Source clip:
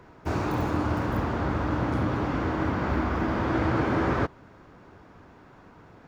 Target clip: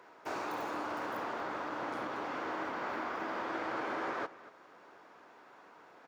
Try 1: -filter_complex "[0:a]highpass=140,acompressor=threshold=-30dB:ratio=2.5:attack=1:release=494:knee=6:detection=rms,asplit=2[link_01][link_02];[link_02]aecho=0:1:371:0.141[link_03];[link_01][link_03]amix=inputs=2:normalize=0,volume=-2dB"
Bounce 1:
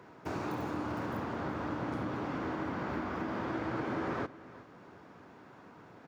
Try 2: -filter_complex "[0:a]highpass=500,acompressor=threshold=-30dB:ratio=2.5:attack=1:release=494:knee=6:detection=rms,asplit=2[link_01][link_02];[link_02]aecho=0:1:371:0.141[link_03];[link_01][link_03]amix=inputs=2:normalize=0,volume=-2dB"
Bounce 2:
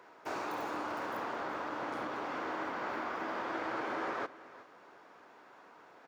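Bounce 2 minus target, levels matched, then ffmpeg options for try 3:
echo 135 ms late
-filter_complex "[0:a]highpass=500,acompressor=threshold=-30dB:ratio=2.5:attack=1:release=494:knee=6:detection=rms,asplit=2[link_01][link_02];[link_02]aecho=0:1:236:0.141[link_03];[link_01][link_03]amix=inputs=2:normalize=0,volume=-2dB"

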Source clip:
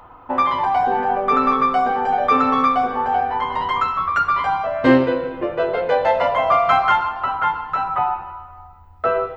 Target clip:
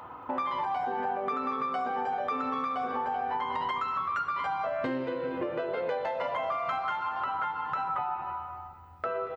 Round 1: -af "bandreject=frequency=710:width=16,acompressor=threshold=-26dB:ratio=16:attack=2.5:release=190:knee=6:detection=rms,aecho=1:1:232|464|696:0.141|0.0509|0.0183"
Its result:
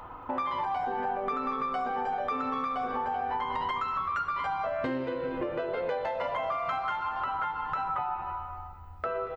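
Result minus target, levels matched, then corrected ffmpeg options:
125 Hz band +3.0 dB
-af "bandreject=frequency=710:width=16,acompressor=threshold=-26dB:ratio=16:attack=2.5:release=190:knee=6:detection=rms,highpass=110,aecho=1:1:232|464|696:0.141|0.0509|0.0183"

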